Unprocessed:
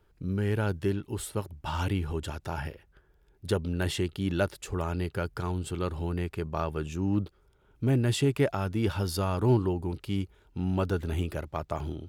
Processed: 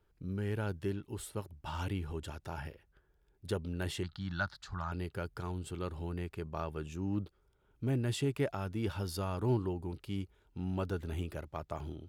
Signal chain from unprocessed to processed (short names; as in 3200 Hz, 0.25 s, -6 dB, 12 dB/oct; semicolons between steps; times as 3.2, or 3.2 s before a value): 4.03–4.92 EQ curve 180 Hz 0 dB, 460 Hz -20 dB, 690 Hz -1 dB, 1500 Hz +8 dB, 2600 Hz -8 dB, 4200 Hz +8 dB, 10000 Hz -17 dB; gain -7.5 dB